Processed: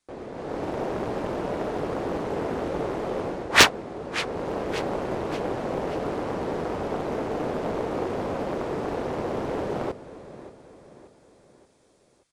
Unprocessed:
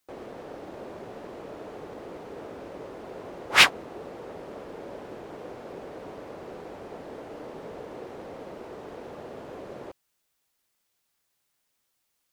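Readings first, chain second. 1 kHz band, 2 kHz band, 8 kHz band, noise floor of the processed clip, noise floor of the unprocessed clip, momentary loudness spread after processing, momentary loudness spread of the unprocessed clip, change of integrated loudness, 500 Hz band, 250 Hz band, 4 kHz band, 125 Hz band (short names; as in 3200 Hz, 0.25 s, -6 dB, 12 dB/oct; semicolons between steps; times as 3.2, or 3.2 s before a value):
+7.0 dB, +1.0 dB, +5.5 dB, -62 dBFS, -77 dBFS, 5 LU, 3 LU, +2.0 dB, +10.5 dB, +12.0 dB, +1.0 dB, +13.0 dB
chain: low shelf 320 Hz +6 dB; notch 2900 Hz; AGC gain up to 10 dB; on a send: feedback echo 0.579 s, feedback 47%, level -15 dB; on the sum: downsampling 22050 Hz; Doppler distortion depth 0.88 ms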